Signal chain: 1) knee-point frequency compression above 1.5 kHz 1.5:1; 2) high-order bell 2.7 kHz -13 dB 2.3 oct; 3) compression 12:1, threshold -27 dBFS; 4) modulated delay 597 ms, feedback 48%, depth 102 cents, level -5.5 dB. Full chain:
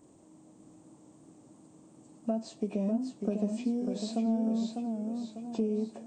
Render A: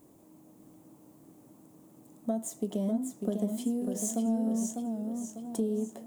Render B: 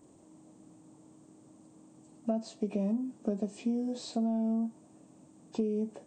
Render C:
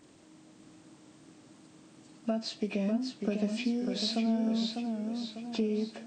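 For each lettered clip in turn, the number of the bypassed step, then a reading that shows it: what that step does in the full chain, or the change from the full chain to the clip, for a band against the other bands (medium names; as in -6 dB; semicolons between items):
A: 1, 8 kHz band +14.0 dB; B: 4, momentary loudness spread change -2 LU; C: 2, 4 kHz band +12.0 dB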